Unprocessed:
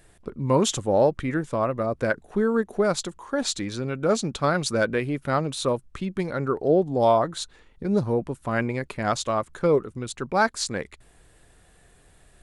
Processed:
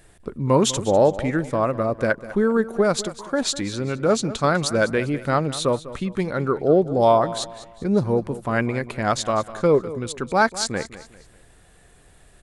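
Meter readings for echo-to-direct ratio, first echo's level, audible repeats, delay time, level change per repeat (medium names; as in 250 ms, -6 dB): -15.0 dB, -15.5 dB, 3, 199 ms, -8.5 dB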